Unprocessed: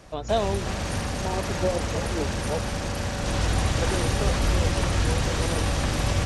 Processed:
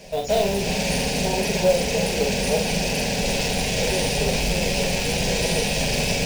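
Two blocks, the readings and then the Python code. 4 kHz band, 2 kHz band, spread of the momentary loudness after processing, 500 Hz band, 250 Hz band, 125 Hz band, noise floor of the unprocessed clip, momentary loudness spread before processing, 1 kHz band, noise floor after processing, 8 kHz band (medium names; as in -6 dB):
+7.5 dB, +5.5 dB, 2 LU, +6.0 dB, +4.0 dB, -2.0 dB, -30 dBFS, 5 LU, +1.5 dB, -25 dBFS, +7.0 dB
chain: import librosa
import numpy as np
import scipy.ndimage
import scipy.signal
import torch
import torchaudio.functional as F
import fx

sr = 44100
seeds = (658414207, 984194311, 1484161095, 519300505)

p1 = fx.graphic_eq_31(x, sr, hz=(400, 2500, 5000), db=(8, 9, 5))
p2 = fx.rider(p1, sr, range_db=10, speed_s=0.5)
p3 = p1 + (p2 * 10.0 ** (2.0 / 20.0))
p4 = 10.0 ** (-12.5 / 20.0) * np.tanh(p3 / 10.0 ** (-12.5 / 20.0))
p5 = fx.fixed_phaser(p4, sr, hz=330.0, stages=6)
p6 = fx.quant_float(p5, sr, bits=2)
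p7 = p6 + fx.room_early_taps(p6, sr, ms=(11, 45), db=(-6.0, -4.0), dry=0)
y = p7 * 10.0 ** (-1.0 / 20.0)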